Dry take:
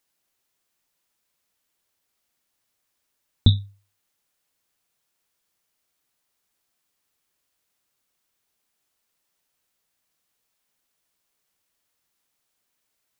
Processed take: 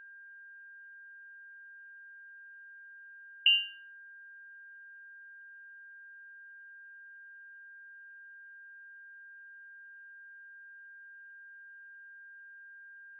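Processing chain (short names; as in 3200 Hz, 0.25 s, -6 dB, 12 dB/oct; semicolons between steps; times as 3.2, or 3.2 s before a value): limiter -13 dBFS, peak gain reduction 9.5 dB; flange 1.6 Hz, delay 0.3 ms, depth 1.2 ms, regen +43%; whine 1300 Hz -49 dBFS; inverted band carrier 2900 Hz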